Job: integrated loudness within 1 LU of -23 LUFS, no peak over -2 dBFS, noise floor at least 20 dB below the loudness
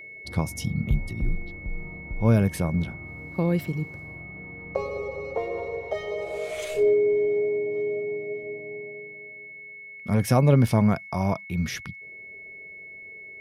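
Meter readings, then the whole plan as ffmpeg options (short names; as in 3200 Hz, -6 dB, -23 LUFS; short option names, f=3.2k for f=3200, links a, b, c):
steady tone 2200 Hz; tone level -40 dBFS; loudness -26.0 LUFS; peak -8.0 dBFS; loudness target -23.0 LUFS
-> -af "bandreject=f=2.2k:w=30"
-af "volume=3dB"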